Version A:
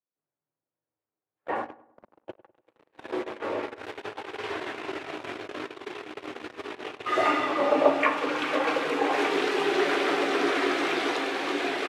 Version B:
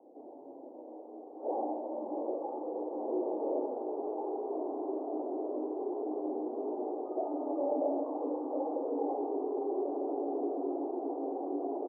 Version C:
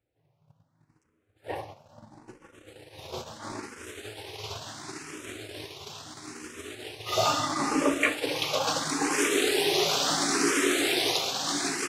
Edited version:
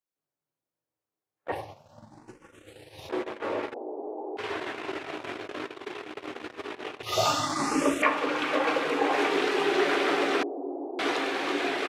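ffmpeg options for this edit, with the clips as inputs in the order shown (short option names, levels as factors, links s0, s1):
-filter_complex "[2:a]asplit=2[s0][s1];[1:a]asplit=2[s2][s3];[0:a]asplit=5[s4][s5][s6][s7][s8];[s4]atrim=end=1.522[s9];[s0]atrim=start=1.518:end=3.092[s10];[s5]atrim=start=3.088:end=3.742[s11];[s2]atrim=start=3.738:end=4.372[s12];[s6]atrim=start=4.368:end=7.032[s13];[s1]atrim=start=7.028:end=8.022[s14];[s7]atrim=start=8.018:end=10.432[s15];[s3]atrim=start=10.428:end=10.992[s16];[s8]atrim=start=10.988[s17];[s9][s10]acrossfade=d=0.004:c1=hsin:c2=hsin[s18];[s18][s11]acrossfade=d=0.004:c1=hsin:c2=hsin[s19];[s19][s12]acrossfade=d=0.004:c1=hsin:c2=hsin[s20];[s20][s13]acrossfade=d=0.004:c1=hsin:c2=hsin[s21];[s21][s14]acrossfade=d=0.004:c1=hsin:c2=hsin[s22];[s22][s15]acrossfade=d=0.004:c1=hsin:c2=hsin[s23];[s23][s16]acrossfade=d=0.004:c1=hsin:c2=hsin[s24];[s24][s17]acrossfade=d=0.004:c1=hsin:c2=hsin"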